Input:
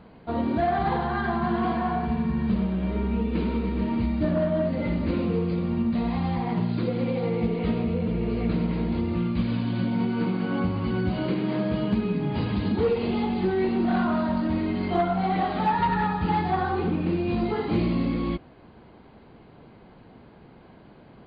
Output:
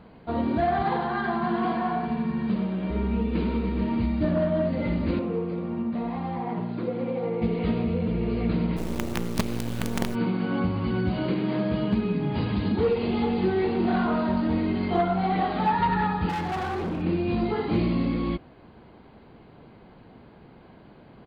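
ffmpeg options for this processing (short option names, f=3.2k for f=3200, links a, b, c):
-filter_complex "[0:a]asettb=1/sr,asplit=3[a][b][c];[a]atrim=end=0.824[d];[b]atrim=start=0.82:end=2.9,asetpts=PTS-STARTPTS,afade=t=in:d=0.004:c=qsin,afade=t=out:st=2.076:d=0.004:c=qsin,highpass=160[e];[c]atrim=start=2.896[f];[d][e]acrossfade=d=0.004:c1=hsin:c2=qsin[g];[g][f]acrossfade=d=0.004:c1=qsin:c2=hsin,asettb=1/sr,asplit=3[h][i][j];[h]atrim=end=5.194[k];[i]atrim=start=5.19:end=7.42,asetpts=PTS-STARTPTS,afade=t=in:d=0.004:c=qsin,afade=t=out:st=2.226:d=0.004:c=qsin,bandpass=f=630:t=q:w=0.5[l];[j]atrim=start=7.416[m];[k][l]acrossfade=d=0.004:c1=hsin:c2=qsin[n];[n][m]acrossfade=d=0.004:c1=qsin:c2=hsin,asplit=3[o][p][q];[o]afade=t=out:st=8.76:d=0.02[r];[p]acrusher=bits=4:dc=4:mix=0:aa=0.000001,afade=t=in:st=8.76:d=0.02,afade=t=out:st=10.14:d=0.02[s];[q]afade=t=in:st=10.14:d=0.02[t];[r][s][t]amix=inputs=3:normalize=0,asplit=2[u][v];[v]afade=t=in:st=12.72:d=0.01,afade=t=out:st=13.52:d=0.01,aecho=0:1:420|840|1260|1680|2100|2520|2940|3360|3780|4200|4620:0.354813|0.248369|0.173859|0.121701|0.0851907|0.0596335|0.0417434|0.0292204|0.0204543|0.014318|0.0100226[w];[u][w]amix=inputs=2:normalize=0,asettb=1/sr,asplit=3[x][y][z];[x]atrim=end=16.294[aa];[y]atrim=start=16.29:end=17.02,asetpts=PTS-STARTPTS,afade=t=in:d=0.004:c=qsin,afade=t=out:st=0.726:d=0.004:c=qsin,asoftclip=type=hard:threshold=-26.5dB[ab];[z]atrim=start=17.016[ac];[aa][ab]acrossfade=d=0.004:c1=hsin:c2=qsin[ad];[ad][ac]acrossfade=d=0.004:c1=qsin:c2=hsin"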